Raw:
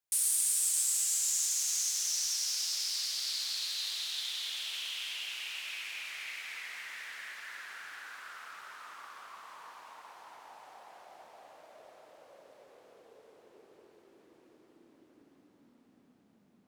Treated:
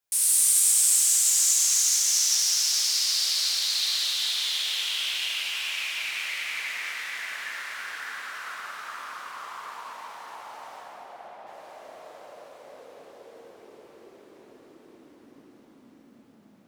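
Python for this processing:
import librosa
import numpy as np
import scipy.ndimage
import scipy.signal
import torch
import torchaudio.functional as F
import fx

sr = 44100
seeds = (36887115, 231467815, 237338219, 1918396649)

y = fx.air_absorb(x, sr, metres=240.0, at=(10.79, 11.47))
y = fx.rev_plate(y, sr, seeds[0], rt60_s=3.2, hf_ratio=0.8, predelay_ms=0, drr_db=-5.5)
y = F.gain(torch.from_numpy(y), 3.5).numpy()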